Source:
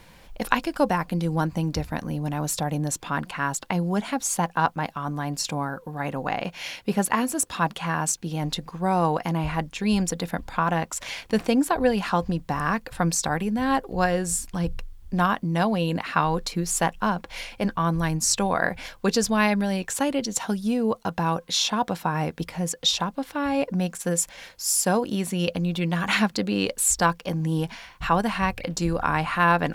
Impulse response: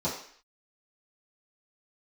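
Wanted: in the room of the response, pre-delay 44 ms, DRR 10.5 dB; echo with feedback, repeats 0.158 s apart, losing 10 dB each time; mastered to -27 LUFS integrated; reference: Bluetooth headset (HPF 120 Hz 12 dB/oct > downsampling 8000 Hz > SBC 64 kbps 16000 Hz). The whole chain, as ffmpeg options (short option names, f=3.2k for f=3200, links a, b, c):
-filter_complex "[0:a]aecho=1:1:158|316|474|632:0.316|0.101|0.0324|0.0104,asplit=2[a][b];[1:a]atrim=start_sample=2205,adelay=44[c];[b][c]afir=irnorm=-1:irlink=0,volume=-19dB[d];[a][d]amix=inputs=2:normalize=0,highpass=120,aresample=8000,aresample=44100,volume=-2dB" -ar 16000 -c:a sbc -b:a 64k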